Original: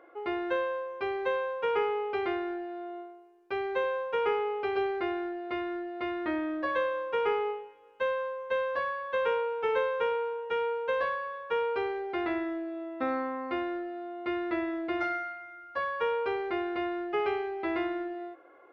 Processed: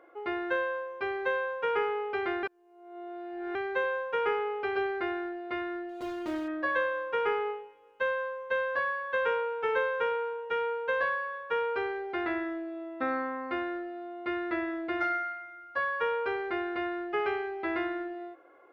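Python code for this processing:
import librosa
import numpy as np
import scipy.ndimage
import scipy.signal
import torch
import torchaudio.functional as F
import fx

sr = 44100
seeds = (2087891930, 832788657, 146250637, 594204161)

y = fx.median_filter(x, sr, points=25, at=(5.89, 6.48))
y = fx.edit(y, sr, fx.reverse_span(start_s=2.43, length_s=1.12), tone=tone)
y = fx.dynamic_eq(y, sr, hz=1600.0, q=2.6, threshold_db=-50.0, ratio=4.0, max_db=7)
y = y * 10.0 ** (-1.5 / 20.0)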